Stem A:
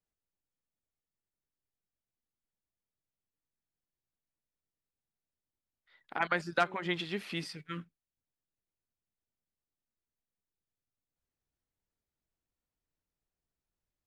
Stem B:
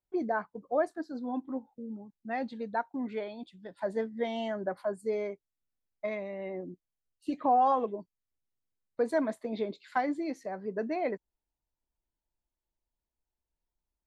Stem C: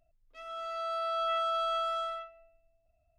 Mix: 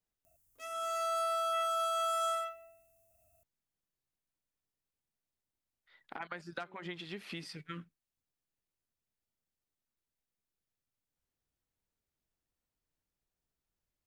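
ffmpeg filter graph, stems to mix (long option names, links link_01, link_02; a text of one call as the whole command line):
ffmpeg -i stem1.wav -i stem2.wav -i stem3.wav -filter_complex "[0:a]acompressor=threshold=-40dB:ratio=6,volume=0.5dB[link_01];[2:a]highpass=71,aexciter=amount=8.8:drive=4.1:freq=6100,adelay=250,volume=2.5dB[link_02];[link_01][link_02]amix=inputs=2:normalize=0,alimiter=level_in=2dB:limit=-24dB:level=0:latency=1:release=65,volume=-2dB" out.wav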